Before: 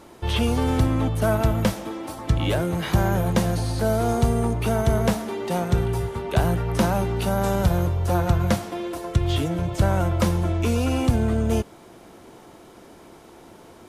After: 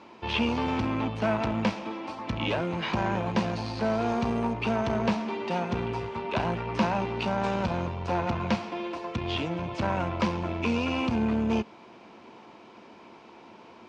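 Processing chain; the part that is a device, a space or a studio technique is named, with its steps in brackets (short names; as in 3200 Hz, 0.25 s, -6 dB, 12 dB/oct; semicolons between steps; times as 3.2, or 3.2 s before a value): guitar amplifier (tube stage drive 16 dB, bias 0.5; tone controls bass -5 dB, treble +8 dB; speaker cabinet 84–4400 Hz, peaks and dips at 220 Hz +8 dB, 980 Hz +8 dB, 2500 Hz +9 dB, 3700 Hz -3 dB); gain -2.5 dB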